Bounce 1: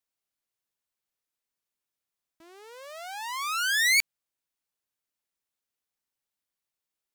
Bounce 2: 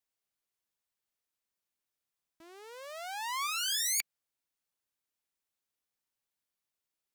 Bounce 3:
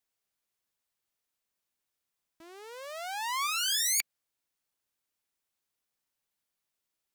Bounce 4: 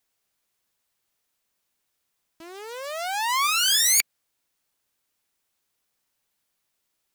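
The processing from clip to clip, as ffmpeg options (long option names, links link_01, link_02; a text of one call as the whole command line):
ffmpeg -i in.wav -af "afftfilt=real='re*lt(hypot(re,im),0.316)':imag='im*lt(hypot(re,im),0.316)':win_size=1024:overlap=0.75,volume=-1.5dB" out.wav
ffmpeg -i in.wav -af "acontrast=82,volume=-4dB" out.wav
ffmpeg -i in.wav -af "acrusher=bits=4:mode=log:mix=0:aa=0.000001,volume=8.5dB" out.wav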